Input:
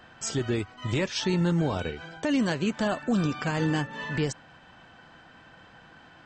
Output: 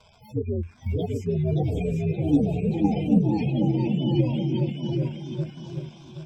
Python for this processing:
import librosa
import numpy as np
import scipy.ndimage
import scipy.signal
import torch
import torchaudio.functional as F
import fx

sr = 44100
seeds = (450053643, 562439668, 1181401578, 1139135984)

p1 = fx.partial_stretch(x, sr, pct=127)
p2 = fx.brickwall_bandstop(p1, sr, low_hz=890.0, high_hz=1800.0)
p3 = fx.echo_wet_highpass(p2, sr, ms=735, feedback_pct=54, hz=2600.0, wet_db=-10.0)
p4 = fx.dmg_crackle(p3, sr, seeds[0], per_s=250.0, level_db=-36.0)
p5 = fx.ripple_eq(p4, sr, per_octave=1.7, db=7)
p6 = fx.spec_gate(p5, sr, threshold_db=-15, keep='strong')
p7 = fx.echo_pitch(p6, sr, ms=628, semitones=1, count=3, db_per_echo=-3.0)
p8 = fx.air_absorb(p7, sr, metres=140.0)
p9 = fx.env_phaser(p8, sr, low_hz=310.0, high_hz=3800.0, full_db=-18.5)
p10 = fx.echo_feedback(p9, sr, ms=775, feedback_pct=25, wet_db=-5.5)
p11 = fx.level_steps(p10, sr, step_db=11)
y = p10 + F.gain(torch.from_numpy(p11), -0.5).numpy()